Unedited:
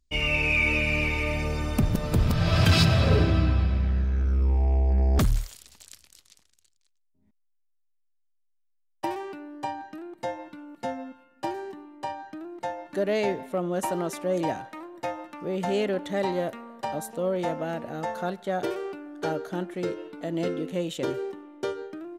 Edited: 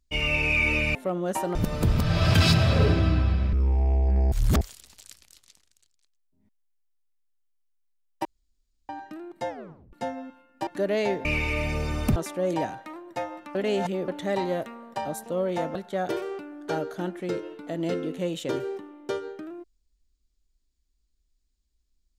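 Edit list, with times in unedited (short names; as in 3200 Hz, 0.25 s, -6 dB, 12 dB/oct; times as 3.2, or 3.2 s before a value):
0.95–1.86 swap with 13.43–14.03
3.84–4.35 cut
5.14–5.43 reverse
9.07–9.71 room tone
10.31 tape stop 0.44 s
11.49–12.85 cut
15.42–15.95 reverse
17.62–18.29 cut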